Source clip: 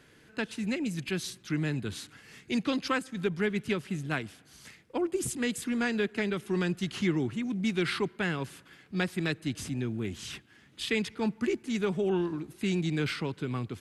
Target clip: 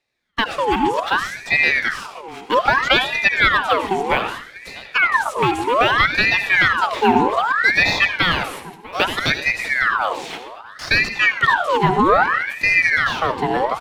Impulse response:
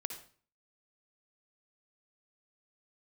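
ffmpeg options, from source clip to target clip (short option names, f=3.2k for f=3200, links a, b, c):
-filter_complex "[0:a]agate=range=-31dB:threshold=-50dB:ratio=16:detection=peak,asettb=1/sr,asplit=3[a][b][c];[a]atrim=end=8.314[d];[b]atrim=start=8.31:end=9.3,asetpts=PTS-STARTPTS,afade=t=in:d=0.004:c=qsin,afade=t=out:st=0.986:d=0.004:c=qsin,aemphasis=mode=production:type=riaa[e];[c]atrim=start=9.296[f];[d][e]acrossfade=d=0.004:c1=hsin:c2=qsin[g];[g][f]acrossfade=d=0.004:c1=qsin:c2=hsin,acrossover=split=2500[h][i];[i]acompressor=threshold=-49dB:ratio=4:attack=1:release=60[j];[h][j]amix=inputs=2:normalize=0,highshelf=f=11k:g=-6.5,asettb=1/sr,asplit=3[k][l][m];[k]atrim=end=12.624[n];[l]atrim=start=12.62:end=13.2,asetpts=PTS-STARTPTS,afade=t=in:d=0.004:c=qsin,afade=t=out:st=0.576:d=0.004:c=qsin,acrossover=split=280|3000[o][p][q];[p]acompressor=threshold=-37dB:ratio=6[r];[o][r][q]amix=inputs=3:normalize=0[s];[m]atrim=start=13.196[t];[n][s]acrossfade=d=0.004:c1=hsin:c2=qsin[u];[u][t]acrossfade=d=0.004:c1=qsin:c2=hsin,acrossover=split=330|2200[v][w][x];[w]crystalizer=i=3.5:c=0[y];[x]acrusher=bits=4:mode=log:mix=0:aa=0.000001[z];[v][y][z]amix=inputs=3:normalize=0,aecho=1:1:646|1292|1938:0.112|0.0415|0.0154,asplit=2[aa][ab];[1:a]atrim=start_sample=2205,asetrate=33957,aresample=44100[ac];[ab][ac]afir=irnorm=-1:irlink=0,volume=5dB[ad];[aa][ad]amix=inputs=2:normalize=0,aeval=exprs='val(0)*sin(2*PI*1400*n/s+1400*0.6/0.63*sin(2*PI*0.63*n/s))':c=same,volume=7dB"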